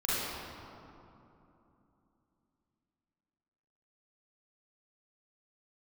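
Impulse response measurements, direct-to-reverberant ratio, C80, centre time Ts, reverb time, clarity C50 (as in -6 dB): -10.5 dB, -2.5 dB, 0.188 s, 3.0 s, -6.0 dB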